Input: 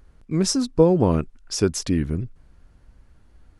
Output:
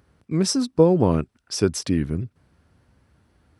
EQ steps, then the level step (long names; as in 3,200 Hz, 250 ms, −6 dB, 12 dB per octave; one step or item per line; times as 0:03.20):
high-pass filter 76 Hz 24 dB per octave
notch filter 6,800 Hz, Q 9.1
0.0 dB